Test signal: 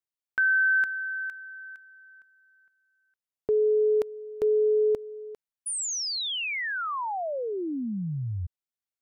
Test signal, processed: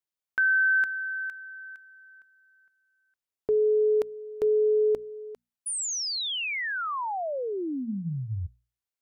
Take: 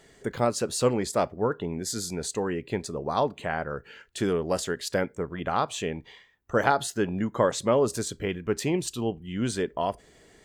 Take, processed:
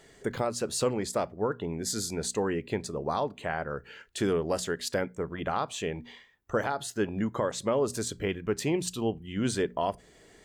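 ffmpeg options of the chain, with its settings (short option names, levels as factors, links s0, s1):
-af "alimiter=limit=0.141:level=0:latency=1:release=449,bandreject=f=60:t=h:w=6,bandreject=f=120:t=h:w=6,bandreject=f=180:t=h:w=6,bandreject=f=240:t=h:w=6"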